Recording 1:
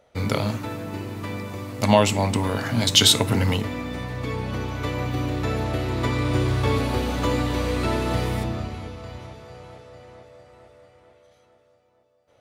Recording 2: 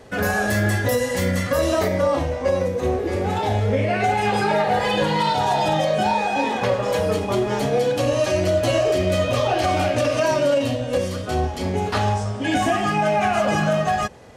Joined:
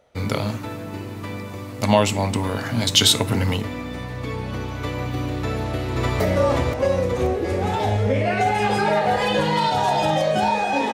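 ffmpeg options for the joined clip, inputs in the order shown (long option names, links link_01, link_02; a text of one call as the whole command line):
ffmpeg -i cue0.wav -i cue1.wav -filter_complex "[0:a]apad=whole_dur=10.93,atrim=end=10.93,atrim=end=6.202[link_01];[1:a]atrim=start=1.828:end=6.56[link_02];[link_01][link_02]acrossfade=duration=0.004:curve1=hsin:curve2=hsin,asplit=2[link_03][link_04];[link_04]afade=type=in:start_time=5.42:duration=0.01,afade=type=out:start_time=6.2:duration=0.01,aecho=0:1:530|1060|1590|2120|2650|3180|3710:0.841395|0.420698|0.210349|0.105174|0.0525872|0.0262936|0.0131468[link_05];[link_03][link_05]amix=inputs=2:normalize=0" out.wav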